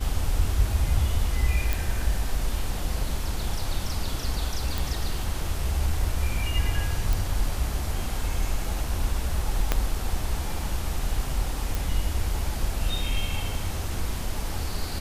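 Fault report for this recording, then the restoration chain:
0:01.73: click
0:04.78: click
0:07.13: click
0:09.72: click −7 dBFS
0:11.75: click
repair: click removal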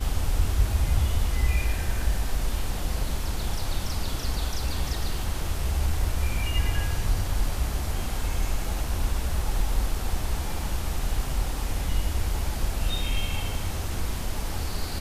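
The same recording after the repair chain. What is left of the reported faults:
0:09.72: click

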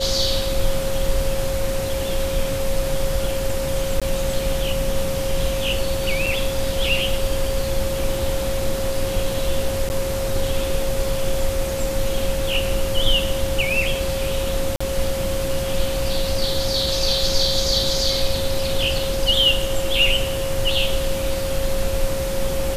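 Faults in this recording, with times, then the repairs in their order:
whistle 540 Hz −24 dBFS
0:04.00–0:04.02: drop-out 16 ms
0:06.26: drop-out 4.4 ms
0:09.89–0:09.90: drop-out 9.9 ms
0:14.76–0:14.80: drop-out 45 ms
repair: notch filter 540 Hz, Q 30
repair the gap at 0:04.00, 16 ms
repair the gap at 0:06.26, 4.4 ms
repair the gap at 0:09.89, 9.9 ms
repair the gap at 0:14.76, 45 ms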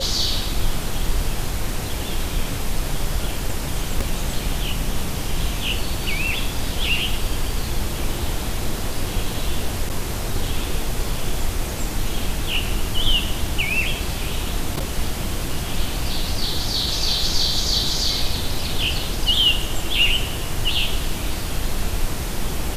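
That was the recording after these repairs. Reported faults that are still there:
none of them is left

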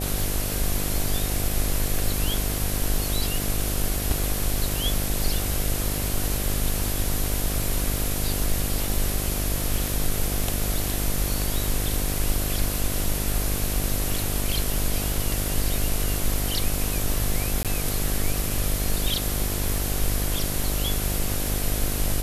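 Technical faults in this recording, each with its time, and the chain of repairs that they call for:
mains buzz 50 Hz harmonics 15 −29 dBFS
0:17.63–0:17.65: drop-out 17 ms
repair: hum removal 50 Hz, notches 15
repair the gap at 0:17.63, 17 ms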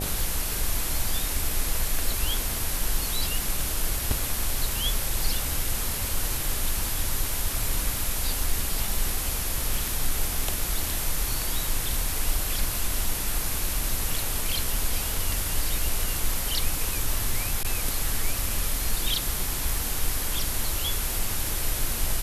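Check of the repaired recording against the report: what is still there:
none of them is left

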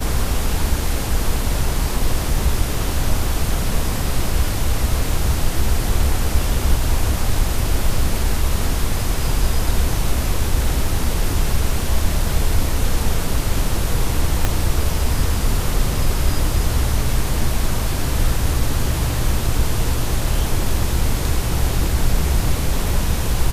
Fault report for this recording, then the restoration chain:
0:14.45: click −4 dBFS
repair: click removal

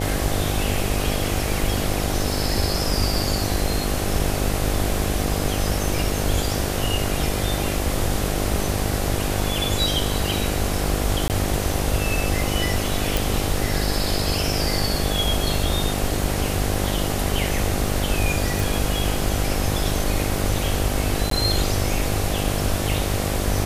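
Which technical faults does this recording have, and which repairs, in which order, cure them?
mains buzz 50 Hz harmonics 16 −26 dBFS
0:11.28–0:11.30: drop-out 18 ms
0:13.17: click
0:18.60: click
0:21.30–0:21.31: drop-out 13 ms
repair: click removal
hum removal 50 Hz, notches 16
repair the gap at 0:11.28, 18 ms
repair the gap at 0:21.30, 13 ms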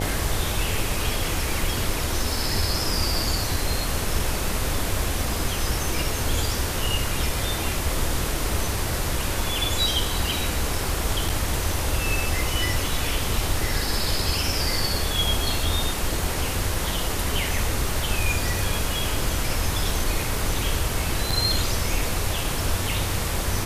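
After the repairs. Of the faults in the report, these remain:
none of them is left

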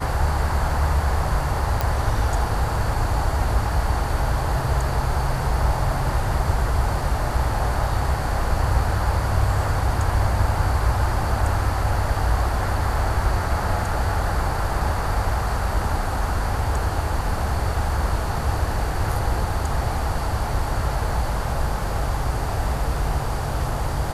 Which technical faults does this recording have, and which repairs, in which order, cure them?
0:01.81: click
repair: click removal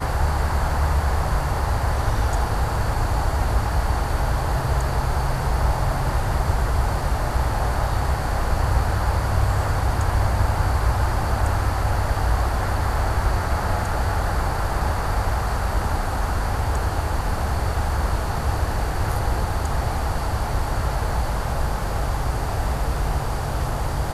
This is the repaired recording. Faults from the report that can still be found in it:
none of them is left

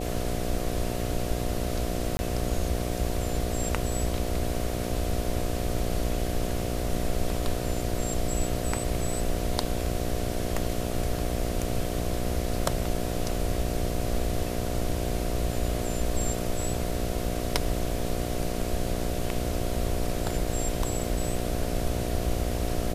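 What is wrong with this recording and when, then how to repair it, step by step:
mains buzz 60 Hz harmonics 12 −32 dBFS
0:02.17–0:02.19: drop-out 20 ms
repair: hum removal 60 Hz, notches 12
repair the gap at 0:02.17, 20 ms

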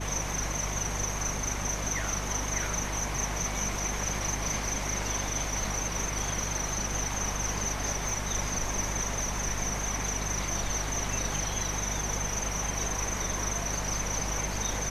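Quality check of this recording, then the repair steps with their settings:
mains hum 50 Hz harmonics 5 −36 dBFS
0:08.09: click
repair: click removal
hum removal 50 Hz, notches 5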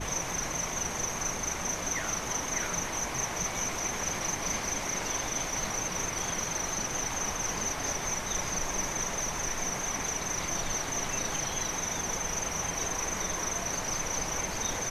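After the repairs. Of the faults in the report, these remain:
0:08.09: click

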